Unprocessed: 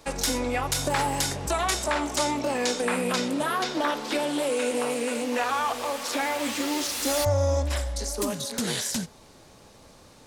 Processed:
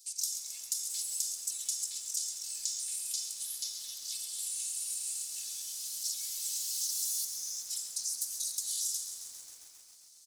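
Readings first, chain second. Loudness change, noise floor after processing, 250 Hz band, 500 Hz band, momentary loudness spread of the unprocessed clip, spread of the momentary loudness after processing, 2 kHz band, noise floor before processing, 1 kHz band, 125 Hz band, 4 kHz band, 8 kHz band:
−7.5 dB, −57 dBFS, below −40 dB, below −40 dB, 4 LU, 6 LU, −29.0 dB, −52 dBFS, below −40 dB, below −40 dB, −7.5 dB, 0.0 dB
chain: inverse Chebyshev high-pass filter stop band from 1,200 Hz, stop band 70 dB
comb filter 2.3 ms, depth 70%
downward compressor 6 to 1, threshold −33 dBFS, peak gain reduction 10 dB
echo with shifted repeats 113 ms, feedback 51%, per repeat −39 Hz, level −13 dB
feedback echo at a low word length 134 ms, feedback 80%, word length 9 bits, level −10 dB
level +1.5 dB

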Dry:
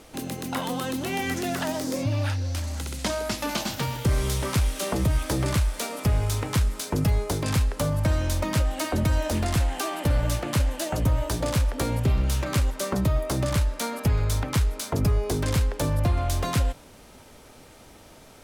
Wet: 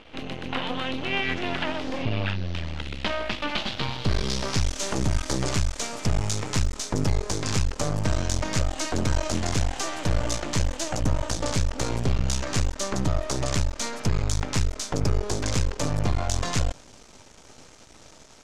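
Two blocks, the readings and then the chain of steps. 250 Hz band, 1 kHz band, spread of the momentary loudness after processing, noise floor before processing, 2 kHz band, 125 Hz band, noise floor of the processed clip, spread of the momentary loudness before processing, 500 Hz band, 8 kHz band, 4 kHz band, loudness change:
−1.5 dB, −0.5 dB, 3 LU, −49 dBFS, +1.5 dB, −2.5 dB, −50 dBFS, 4 LU, −1.5 dB, +2.5 dB, +2.5 dB, −1.5 dB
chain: half-wave rectification
low-pass filter sweep 3,000 Hz → 6,600 Hz, 0:03.48–0:04.80
level +2.5 dB

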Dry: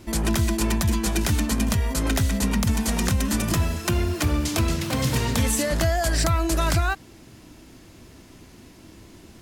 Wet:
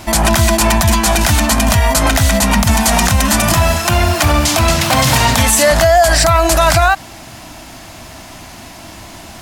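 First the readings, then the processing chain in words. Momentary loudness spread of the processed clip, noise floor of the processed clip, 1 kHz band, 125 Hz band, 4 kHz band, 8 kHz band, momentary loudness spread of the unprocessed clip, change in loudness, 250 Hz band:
3 LU, −35 dBFS, +17.0 dB, +8.5 dB, +14.0 dB, +13.5 dB, 2 LU, +12.0 dB, +7.5 dB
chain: low shelf with overshoot 550 Hz −6.5 dB, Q 3
boost into a limiter +18.5 dB
level −1 dB

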